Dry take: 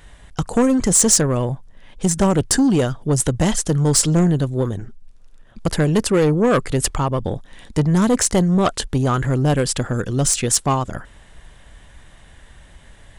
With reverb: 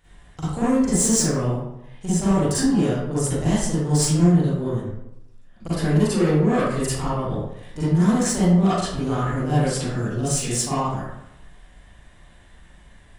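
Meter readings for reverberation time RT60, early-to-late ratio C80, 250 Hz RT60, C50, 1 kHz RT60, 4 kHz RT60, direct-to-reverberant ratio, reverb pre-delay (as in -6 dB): 0.85 s, 1.0 dB, 0.90 s, -5.5 dB, 0.85 s, 0.50 s, -12.0 dB, 37 ms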